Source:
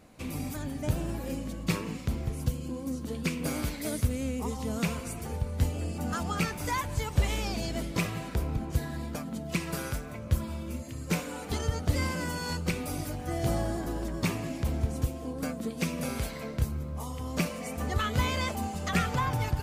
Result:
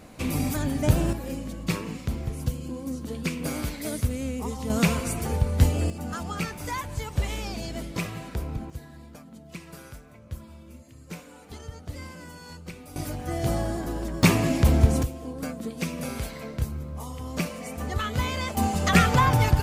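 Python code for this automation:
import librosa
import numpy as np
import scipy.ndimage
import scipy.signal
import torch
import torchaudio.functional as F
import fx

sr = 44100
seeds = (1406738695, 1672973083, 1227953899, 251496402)

y = fx.gain(x, sr, db=fx.steps((0.0, 8.5), (1.13, 1.5), (4.7, 8.0), (5.9, -1.0), (8.7, -10.0), (12.96, 2.5), (14.23, 11.0), (15.03, 0.5), (18.57, 9.0)))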